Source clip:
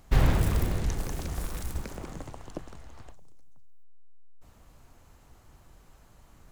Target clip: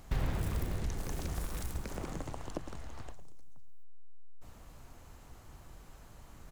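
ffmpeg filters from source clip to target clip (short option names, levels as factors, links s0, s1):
-filter_complex "[0:a]acompressor=threshold=0.0126:ratio=2.5,asplit=2[s0][s1];[s1]aecho=0:1:111:0.158[s2];[s0][s2]amix=inputs=2:normalize=0,volume=1.33"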